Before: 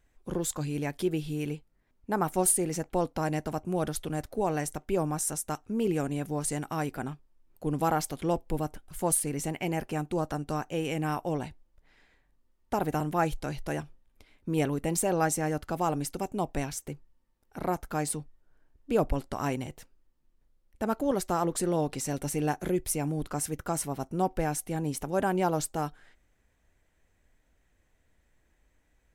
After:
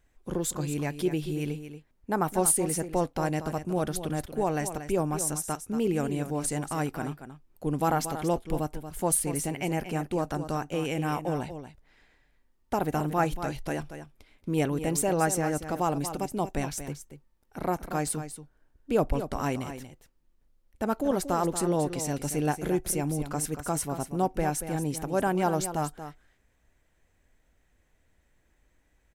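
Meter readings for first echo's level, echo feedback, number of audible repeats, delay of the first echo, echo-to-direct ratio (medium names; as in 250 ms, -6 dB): -10.5 dB, no regular repeats, 1, 233 ms, -10.5 dB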